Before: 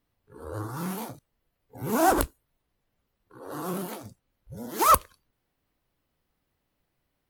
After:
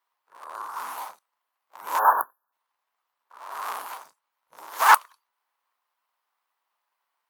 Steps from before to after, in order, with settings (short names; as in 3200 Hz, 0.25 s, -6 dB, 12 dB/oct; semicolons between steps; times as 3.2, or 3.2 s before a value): cycle switcher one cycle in 3, inverted; resonant high-pass 1000 Hz, resonance Q 3.7; spectral delete 1.99–2.53, 1800–11000 Hz; gain -2.5 dB